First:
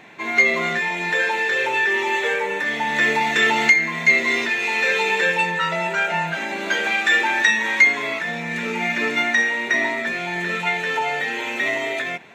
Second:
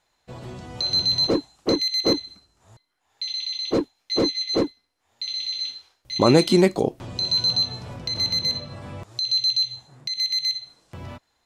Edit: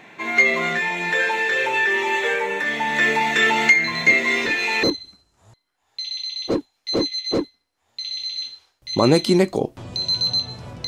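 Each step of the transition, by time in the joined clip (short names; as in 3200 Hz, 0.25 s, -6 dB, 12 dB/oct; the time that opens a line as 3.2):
first
3.84 add second from 1.07 s 0.99 s -9.5 dB
4.83 switch to second from 2.06 s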